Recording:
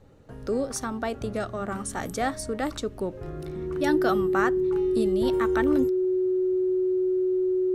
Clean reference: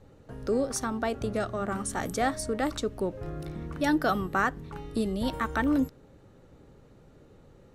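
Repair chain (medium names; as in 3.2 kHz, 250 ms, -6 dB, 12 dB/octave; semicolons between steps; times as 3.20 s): band-stop 370 Hz, Q 30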